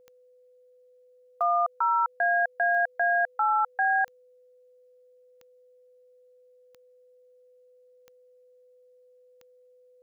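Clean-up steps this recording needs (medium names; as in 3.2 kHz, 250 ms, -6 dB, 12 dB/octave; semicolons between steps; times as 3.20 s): de-click; band-stop 500 Hz, Q 30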